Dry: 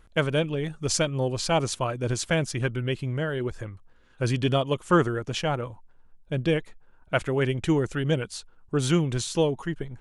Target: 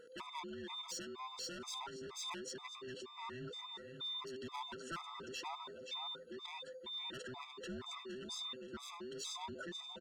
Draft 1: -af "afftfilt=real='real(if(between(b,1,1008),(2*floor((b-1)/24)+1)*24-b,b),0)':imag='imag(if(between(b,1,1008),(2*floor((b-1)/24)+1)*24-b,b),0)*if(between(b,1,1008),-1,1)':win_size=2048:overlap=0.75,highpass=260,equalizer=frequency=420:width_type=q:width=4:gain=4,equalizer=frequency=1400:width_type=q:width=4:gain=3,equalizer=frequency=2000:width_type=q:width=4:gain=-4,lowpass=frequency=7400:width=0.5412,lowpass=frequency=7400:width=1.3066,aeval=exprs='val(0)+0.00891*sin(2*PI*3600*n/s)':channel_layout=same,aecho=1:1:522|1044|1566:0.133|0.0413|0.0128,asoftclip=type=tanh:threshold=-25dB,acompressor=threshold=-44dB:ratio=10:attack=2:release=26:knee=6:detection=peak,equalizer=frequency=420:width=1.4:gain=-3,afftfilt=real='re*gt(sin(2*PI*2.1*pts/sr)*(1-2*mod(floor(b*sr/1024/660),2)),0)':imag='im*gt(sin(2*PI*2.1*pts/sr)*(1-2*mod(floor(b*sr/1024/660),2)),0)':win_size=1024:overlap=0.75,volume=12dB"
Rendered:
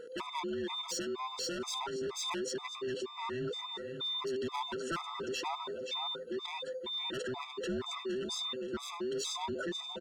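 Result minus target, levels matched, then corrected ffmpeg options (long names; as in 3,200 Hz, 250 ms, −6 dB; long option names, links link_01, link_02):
downward compressor: peak gain reduction −7 dB; 500 Hz band +4.0 dB
-af "afftfilt=real='real(if(between(b,1,1008),(2*floor((b-1)/24)+1)*24-b,b),0)':imag='imag(if(between(b,1,1008),(2*floor((b-1)/24)+1)*24-b,b),0)*if(between(b,1,1008),-1,1)':win_size=2048:overlap=0.75,highpass=260,equalizer=frequency=420:width_type=q:width=4:gain=4,equalizer=frequency=1400:width_type=q:width=4:gain=3,equalizer=frequency=2000:width_type=q:width=4:gain=-4,lowpass=frequency=7400:width=0.5412,lowpass=frequency=7400:width=1.3066,aeval=exprs='val(0)+0.00891*sin(2*PI*3600*n/s)':channel_layout=same,aecho=1:1:522|1044|1566:0.133|0.0413|0.0128,asoftclip=type=tanh:threshold=-25dB,acompressor=threshold=-51.5dB:ratio=10:attack=2:release=26:knee=6:detection=peak,equalizer=frequency=420:width=1.4:gain=-9,afftfilt=real='re*gt(sin(2*PI*2.1*pts/sr)*(1-2*mod(floor(b*sr/1024/660),2)),0)':imag='im*gt(sin(2*PI*2.1*pts/sr)*(1-2*mod(floor(b*sr/1024/660),2)),0)':win_size=1024:overlap=0.75,volume=12dB"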